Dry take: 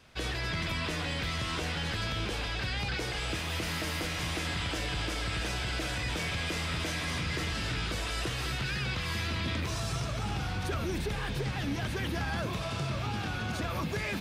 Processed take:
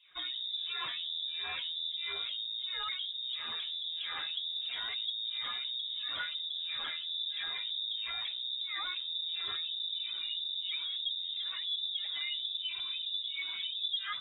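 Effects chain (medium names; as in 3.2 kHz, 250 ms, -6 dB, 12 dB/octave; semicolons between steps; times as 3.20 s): spectral contrast enhancement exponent 1.6; LFO low-pass sine 1.5 Hz 240–2500 Hz; frequency inversion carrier 3.7 kHz; trim -6 dB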